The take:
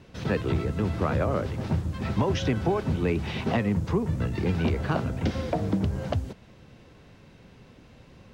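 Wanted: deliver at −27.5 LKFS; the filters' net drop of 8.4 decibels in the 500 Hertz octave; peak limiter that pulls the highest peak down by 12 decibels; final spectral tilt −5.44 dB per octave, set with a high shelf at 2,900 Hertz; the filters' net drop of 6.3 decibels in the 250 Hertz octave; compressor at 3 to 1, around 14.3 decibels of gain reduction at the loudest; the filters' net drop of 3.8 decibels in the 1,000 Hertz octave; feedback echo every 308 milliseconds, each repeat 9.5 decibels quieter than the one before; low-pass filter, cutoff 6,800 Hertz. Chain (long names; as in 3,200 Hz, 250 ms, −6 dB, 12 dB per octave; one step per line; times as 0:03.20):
low-pass filter 6,800 Hz
parametric band 250 Hz −7.5 dB
parametric band 500 Hz −8 dB
parametric band 1,000 Hz −3 dB
high-shelf EQ 2,900 Hz +9 dB
downward compressor 3 to 1, threshold −44 dBFS
brickwall limiter −38.5 dBFS
repeating echo 308 ms, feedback 33%, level −9.5 dB
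level +20 dB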